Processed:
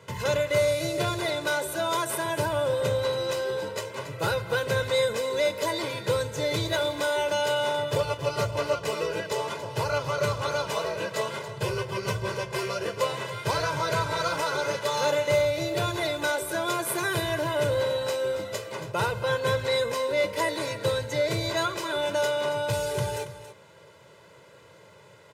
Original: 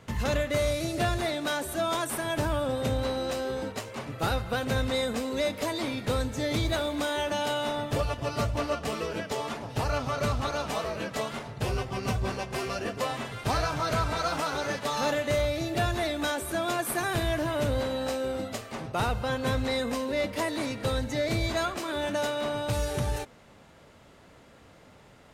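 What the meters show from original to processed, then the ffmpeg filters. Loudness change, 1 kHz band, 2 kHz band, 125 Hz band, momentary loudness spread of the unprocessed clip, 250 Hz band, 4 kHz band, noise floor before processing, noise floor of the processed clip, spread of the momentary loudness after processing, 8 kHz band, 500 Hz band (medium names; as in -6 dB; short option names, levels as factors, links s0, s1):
+2.5 dB, +1.5 dB, +3.5 dB, -0.5 dB, 5 LU, -4.0 dB, +3.0 dB, -54 dBFS, -52 dBFS, 5 LU, +2.5 dB, +4.0 dB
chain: -filter_complex "[0:a]highpass=f=110:w=0.5412,highpass=f=110:w=1.3066,aecho=1:1:2:0.86,asplit=2[s0][s1];[s1]aecho=0:1:278:0.224[s2];[s0][s2]amix=inputs=2:normalize=0"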